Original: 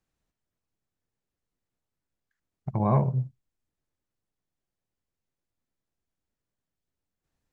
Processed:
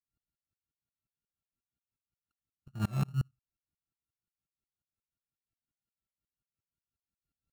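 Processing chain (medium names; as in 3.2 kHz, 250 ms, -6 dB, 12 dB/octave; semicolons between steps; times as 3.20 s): sorted samples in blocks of 32 samples; bass shelf 300 Hz +11.5 dB; comb of notches 500 Hz; wow and flutter 55 cents; sawtooth tremolo in dB swelling 5.6 Hz, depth 32 dB; trim -7.5 dB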